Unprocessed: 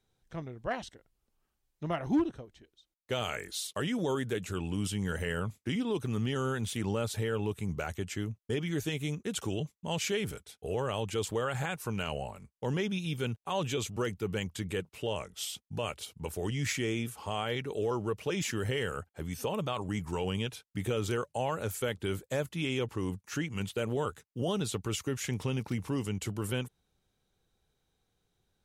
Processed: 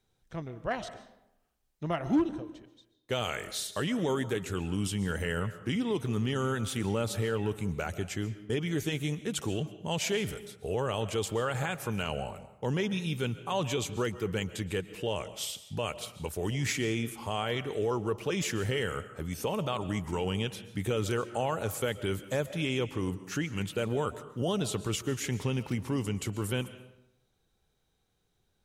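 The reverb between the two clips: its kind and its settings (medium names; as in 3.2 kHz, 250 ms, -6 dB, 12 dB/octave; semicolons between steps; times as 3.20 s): algorithmic reverb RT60 0.86 s, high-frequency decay 0.65×, pre-delay 95 ms, DRR 13.5 dB; trim +1.5 dB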